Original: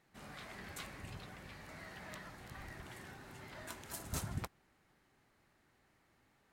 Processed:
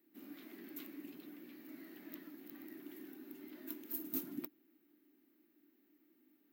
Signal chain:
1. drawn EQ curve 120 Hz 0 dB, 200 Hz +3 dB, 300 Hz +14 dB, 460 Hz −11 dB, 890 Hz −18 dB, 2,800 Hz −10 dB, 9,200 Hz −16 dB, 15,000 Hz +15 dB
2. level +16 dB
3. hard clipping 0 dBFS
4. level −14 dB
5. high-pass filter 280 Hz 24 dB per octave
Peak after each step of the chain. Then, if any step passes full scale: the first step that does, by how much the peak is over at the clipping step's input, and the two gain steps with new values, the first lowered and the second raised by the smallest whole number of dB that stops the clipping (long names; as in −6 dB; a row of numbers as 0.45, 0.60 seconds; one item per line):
−21.5, −5.5, −5.5, −19.5, −21.0 dBFS
no step passes full scale